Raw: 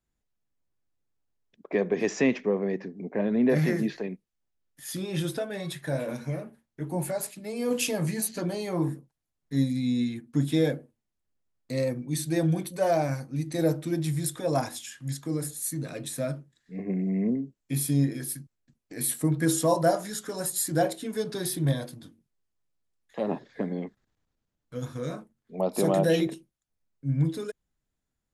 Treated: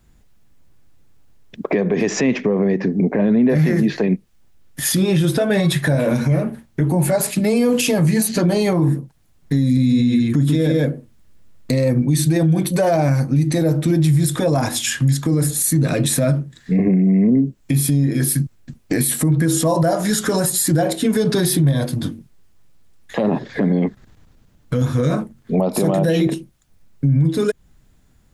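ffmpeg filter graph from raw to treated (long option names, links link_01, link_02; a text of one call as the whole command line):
ffmpeg -i in.wav -filter_complex "[0:a]asettb=1/sr,asplit=3[link_01][link_02][link_03];[link_01]atrim=end=9.634[link_04];[link_02]atrim=start=9.63:end=11.73,asetpts=PTS-STARTPTS,afade=type=in:duration=0.004:curve=qsin,afade=type=out:start_time=2.096:duration=0.004:curve=qsin,bandreject=frequency=800:width=8.3,aecho=1:1:140:0.668,atrim=end_sample=92610[link_05];[link_03]atrim=start=11.726[link_06];[link_04][link_05]acrossfade=duration=0.004:curve1=hsin:curve2=qsin[link_07];[link_07][link_06]acrossfade=duration=0.004:curve1=qsin:curve2=hsin,bass=frequency=250:gain=6,treble=frequency=4000:gain=-2,acompressor=threshold=-38dB:ratio=2.5,alimiter=level_in=31.5dB:limit=-1dB:release=50:level=0:latency=1,volume=-8dB" out.wav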